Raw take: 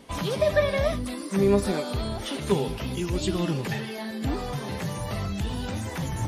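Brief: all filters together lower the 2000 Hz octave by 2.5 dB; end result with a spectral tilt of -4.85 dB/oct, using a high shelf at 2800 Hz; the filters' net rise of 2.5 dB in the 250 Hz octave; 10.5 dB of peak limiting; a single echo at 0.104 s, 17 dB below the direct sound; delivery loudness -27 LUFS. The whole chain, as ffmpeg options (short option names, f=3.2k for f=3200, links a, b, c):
-af "equalizer=f=250:t=o:g=3.5,equalizer=f=2k:t=o:g=-6.5,highshelf=f=2.8k:g=8.5,alimiter=limit=-18dB:level=0:latency=1,aecho=1:1:104:0.141,volume=1.5dB"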